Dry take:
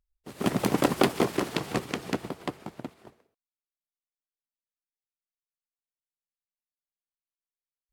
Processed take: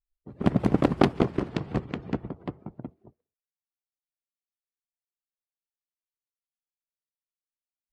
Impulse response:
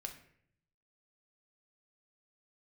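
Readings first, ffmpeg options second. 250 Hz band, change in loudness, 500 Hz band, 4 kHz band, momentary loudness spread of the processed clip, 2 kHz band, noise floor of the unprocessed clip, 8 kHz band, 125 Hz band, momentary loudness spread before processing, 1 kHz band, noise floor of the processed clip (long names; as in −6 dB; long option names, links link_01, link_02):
+3.0 dB, +2.0 dB, 0.0 dB, −7.0 dB, 19 LU, −4.5 dB, below −85 dBFS, below −15 dB, +6.0 dB, 17 LU, −1.5 dB, below −85 dBFS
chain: -af "afftdn=noise_reduction=19:noise_floor=-48,aemphasis=mode=reproduction:type=riaa,aeval=exprs='0.668*(cos(1*acos(clip(val(0)/0.668,-1,1)))-cos(1*PI/2))+0.133*(cos(3*acos(clip(val(0)/0.668,-1,1)))-cos(3*PI/2))':channel_layout=same,volume=1dB"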